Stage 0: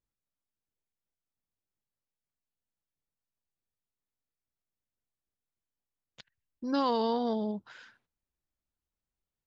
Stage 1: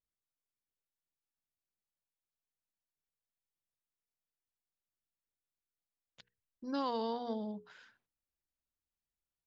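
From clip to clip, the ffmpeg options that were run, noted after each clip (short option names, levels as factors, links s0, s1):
-af "bandreject=f=60:t=h:w=6,bandreject=f=120:t=h:w=6,bandreject=f=180:t=h:w=6,bandreject=f=240:t=h:w=6,bandreject=f=300:t=h:w=6,bandreject=f=360:t=h:w=6,bandreject=f=420:t=h:w=6,bandreject=f=480:t=h:w=6,volume=0.447"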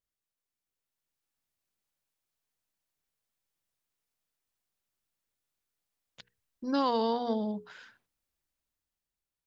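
-af "dynaudnorm=f=150:g=13:m=2,volume=1.19"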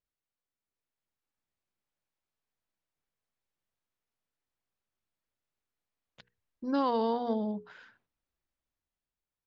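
-af "aemphasis=mode=reproduction:type=75kf"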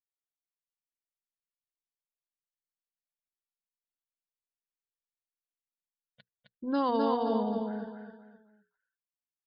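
-filter_complex "[0:a]afftdn=nr=26:nf=-52,asplit=2[s0][s1];[s1]aecho=0:1:261|522|783|1044:0.668|0.227|0.0773|0.0263[s2];[s0][s2]amix=inputs=2:normalize=0"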